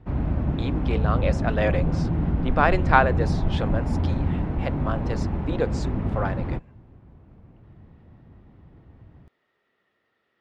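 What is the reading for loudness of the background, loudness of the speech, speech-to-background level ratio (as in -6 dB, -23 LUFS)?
-26.0 LUFS, -27.5 LUFS, -1.5 dB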